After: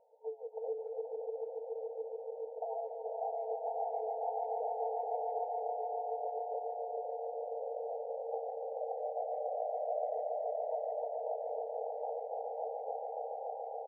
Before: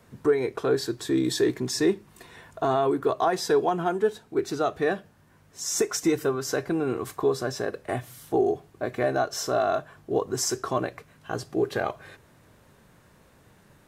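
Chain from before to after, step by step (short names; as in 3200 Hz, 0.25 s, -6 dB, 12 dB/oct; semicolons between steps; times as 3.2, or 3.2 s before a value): regenerating reverse delay 0.272 s, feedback 78%, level -5.5 dB; compressor 16:1, threshold -30 dBFS, peak gain reduction 15 dB; swelling echo 0.143 s, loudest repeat 5, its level -6 dB; FFT band-pass 440–930 Hz; speakerphone echo 0.16 s, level -29 dB; gain -4 dB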